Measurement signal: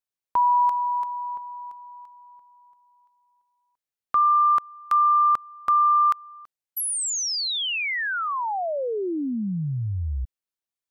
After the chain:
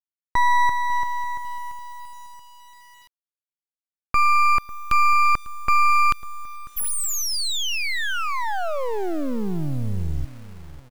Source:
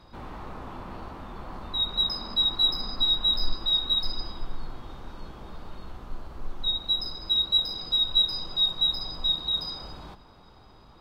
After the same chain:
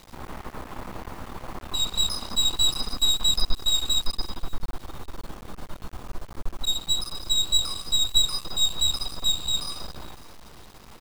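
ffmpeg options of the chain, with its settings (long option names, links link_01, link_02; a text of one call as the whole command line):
ffmpeg -i in.wav -filter_complex "[0:a]aeval=exprs='max(val(0),0)':channel_layout=same,asplit=2[link_01][link_02];[link_02]adelay=548,lowpass=frequency=980:poles=1,volume=-16dB,asplit=2[link_03][link_04];[link_04]adelay=548,lowpass=frequency=980:poles=1,volume=0.37,asplit=2[link_05][link_06];[link_06]adelay=548,lowpass=frequency=980:poles=1,volume=0.37[link_07];[link_01][link_03][link_05][link_07]amix=inputs=4:normalize=0,acrusher=bits=6:dc=4:mix=0:aa=0.000001,volume=5.5dB" out.wav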